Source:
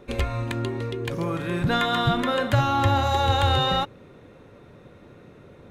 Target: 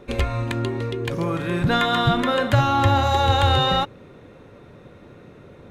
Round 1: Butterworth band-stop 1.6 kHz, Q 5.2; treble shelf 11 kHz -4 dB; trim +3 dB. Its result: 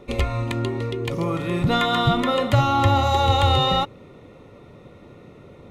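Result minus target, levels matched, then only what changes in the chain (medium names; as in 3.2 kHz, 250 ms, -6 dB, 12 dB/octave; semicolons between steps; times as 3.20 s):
2 kHz band -2.5 dB
remove: Butterworth band-stop 1.6 kHz, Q 5.2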